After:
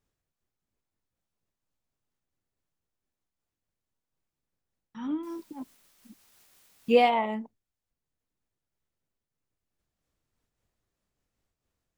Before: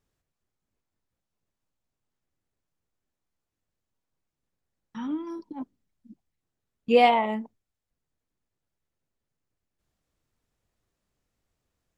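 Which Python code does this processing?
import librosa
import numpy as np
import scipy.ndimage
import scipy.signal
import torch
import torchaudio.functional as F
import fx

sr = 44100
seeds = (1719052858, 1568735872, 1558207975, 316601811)

y = fx.quant_dither(x, sr, seeds[0], bits=10, dither='triangular', at=(5.23, 7.1))
y = fx.am_noise(y, sr, seeds[1], hz=5.7, depth_pct=60)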